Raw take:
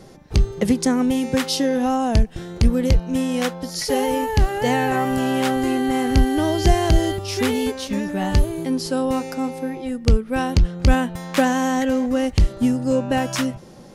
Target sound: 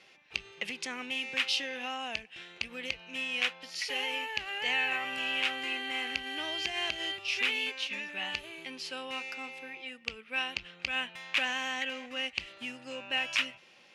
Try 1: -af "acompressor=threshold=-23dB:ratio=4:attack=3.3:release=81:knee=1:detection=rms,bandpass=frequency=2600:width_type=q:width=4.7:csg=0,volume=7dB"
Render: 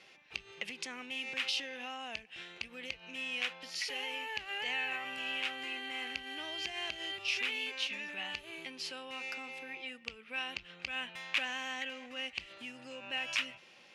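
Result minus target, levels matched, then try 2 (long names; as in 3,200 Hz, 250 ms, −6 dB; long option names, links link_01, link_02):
downward compressor: peak gain reduction +6 dB
-af "acompressor=threshold=-15dB:ratio=4:attack=3.3:release=81:knee=1:detection=rms,bandpass=frequency=2600:width_type=q:width=4.7:csg=0,volume=7dB"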